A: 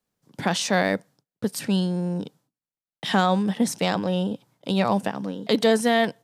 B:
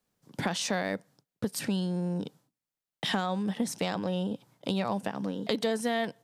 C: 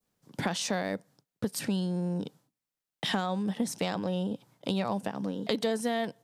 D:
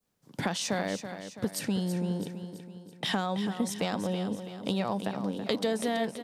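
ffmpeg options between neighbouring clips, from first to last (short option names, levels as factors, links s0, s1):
-af "acompressor=threshold=0.0282:ratio=3,volume=1.19"
-af "adynamicequalizer=threshold=0.00631:dfrequency=2000:dqfactor=0.71:tfrequency=2000:tqfactor=0.71:attack=5:release=100:ratio=0.375:range=2.5:mode=cutabove:tftype=bell"
-af "aecho=1:1:330|660|990|1320|1650:0.316|0.158|0.0791|0.0395|0.0198"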